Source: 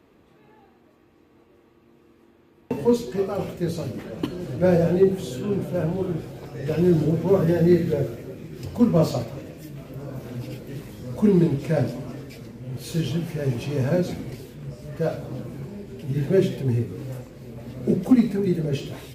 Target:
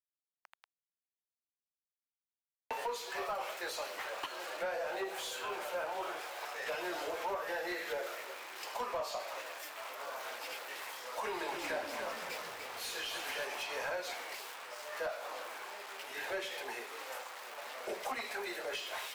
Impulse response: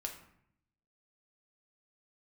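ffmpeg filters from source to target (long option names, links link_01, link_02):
-filter_complex "[0:a]aeval=exprs='val(0)*gte(abs(val(0)),0.00631)':channel_layout=same,highpass=frequency=800:width=0.5412,highpass=frequency=800:width=1.3066,acompressor=threshold=-39dB:ratio=12,asoftclip=type=tanh:threshold=-38dB,highshelf=frequency=3300:gain=-8,asettb=1/sr,asplit=3[link_01][link_02][link_03];[link_01]atrim=end=11.194[link_04];[link_02]atrim=start=11.19:end=13.45,asetpts=PTS-STARTPTS,afade=type=in:duration=0.004:curve=qsin,afade=type=out:start_time=2.256:duration=0.004:curve=qsin,asplit=7[link_05][link_06][link_07][link_08][link_09][link_10][link_11];[link_06]adelay=292,afreqshift=-60,volume=-6dB[link_12];[link_07]adelay=584,afreqshift=-120,volume=-12.4dB[link_13];[link_08]adelay=876,afreqshift=-180,volume=-18.8dB[link_14];[link_09]adelay=1168,afreqshift=-240,volume=-25.1dB[link_15];[link_10]adelay=1460,afreqshift=-300,volume=-31.5dB[link_16];[link_11]adelay=1752,afreqshift=-360,volume=-37.9dB[link_17];[link_05][link_12][link_13][link_14][link_15][link_16][link_17]amix=inputs=7:normalize=0,atrim=end_sample=99666[link_18];[link_03]atrim=start=13.446[link_19];[link_04][link_18]acrossfade=duration=0.004:curve1=hsin:curve2=qsin[link_20];[link_20][link_19]acrossfade=duration=0.004:curve1=qsin:curve2=hsin,volume=8.5dB"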